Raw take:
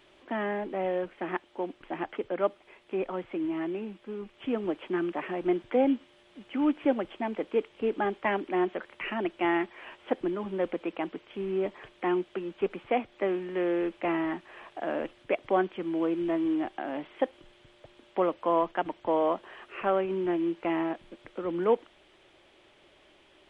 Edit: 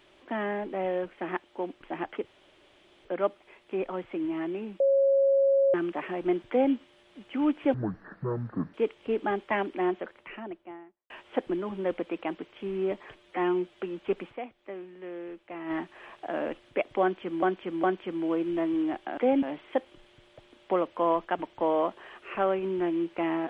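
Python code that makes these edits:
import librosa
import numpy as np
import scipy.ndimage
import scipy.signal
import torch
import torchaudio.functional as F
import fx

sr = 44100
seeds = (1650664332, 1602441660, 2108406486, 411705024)

y = fx.studio_fade_out(x, sr, start_s=8.4, length_s=1.44)
y = fx.edit(y, sr, fx.insert_room_tone(at_s=2.25, length_s=0.8),
    fx.bleep(start_s=4.0, length_s=0.94, hz=548.0, db=-19.0),
    fx.duplicate(start_s=5.69, length_s=0.25, to_s=16.89),
    fx.speed_span(start_s=6.94, length_s=0.54, speed=0.54),
    fx.stretch_span(start_s=11.9, length_s=0.41, factor=1.5),
    fx.fade_down_up(start_s=12.84, length_s=1.41, db=-11.5, fade_s=0.35, curve='exp'),
    fx.repeat(start_s=15.55, length_s=0.41, count=3), tone=tone)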